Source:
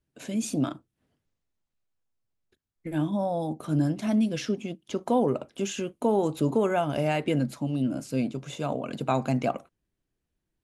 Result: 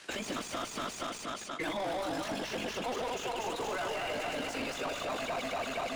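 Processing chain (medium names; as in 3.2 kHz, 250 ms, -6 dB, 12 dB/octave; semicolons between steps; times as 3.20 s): backward echo that repeats 212 ms, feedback 67%, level -2 dB; frequency weighting ITU-R 468; reverse; compression, threshold -39 dBFS, peak gain reduction 17.5 dB; reverse; overdrive pedal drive 35 dB, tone 1.4 kHz, clips at -25 dBFS; granular stretch 0.56×, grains 41 ms; three bands compressed up and down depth 70%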